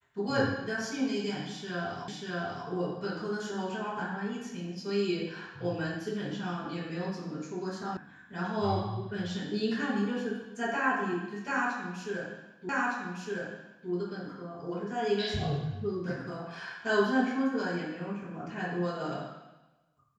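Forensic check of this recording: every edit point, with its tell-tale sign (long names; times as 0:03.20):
0:02.08: the same again, the last 0.59 s
0:07.97: cut off before it has died away
0:12.69: the same again, the last 1.21 s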